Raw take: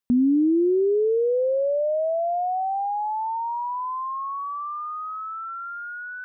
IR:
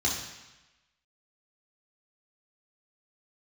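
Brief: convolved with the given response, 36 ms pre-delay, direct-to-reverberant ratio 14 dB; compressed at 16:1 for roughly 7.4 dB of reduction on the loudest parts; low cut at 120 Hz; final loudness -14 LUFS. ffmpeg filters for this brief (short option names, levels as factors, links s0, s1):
-filter_complex "[0:a]highpass=120,acompressor=threshold=0.0562:ratio=16,asplit=2[s0][s1];[1:a]atrim=start_sample=2205,adelay=36[s2];[s1][s2]afir=irnorm=-1:irlink=0,volume=0.0708[s3];[s0][s3]amix=inputs=2:normalize=0,volume=5.31"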